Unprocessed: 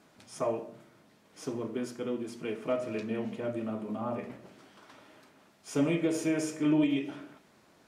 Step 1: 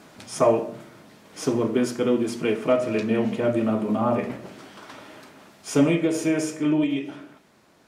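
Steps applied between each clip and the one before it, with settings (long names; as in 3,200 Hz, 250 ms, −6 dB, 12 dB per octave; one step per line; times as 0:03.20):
speech leveller 0.5 s
level +9 dB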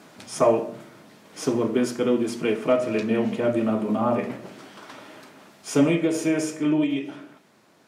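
high-pass filter 110 Hz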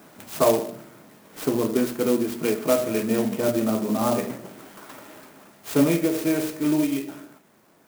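converter with an unsteady clock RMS 0.059 ms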